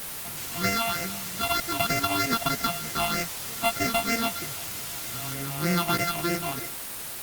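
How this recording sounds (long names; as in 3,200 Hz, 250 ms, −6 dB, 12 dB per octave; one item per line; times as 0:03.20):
a buzz of ramps at a fixed pitch in blocks of 64 samples
phaser sweep stages 6, 3.2 Hz, lowest notch 430–1,000 Hz
a quantiser's noise floor 6 bits, dither triangular
Opus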